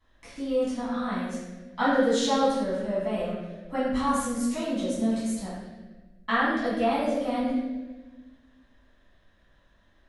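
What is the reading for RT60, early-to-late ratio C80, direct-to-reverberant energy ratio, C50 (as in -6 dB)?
1.3 s, 2.0 dB, -11.5 dB, -1.0 dB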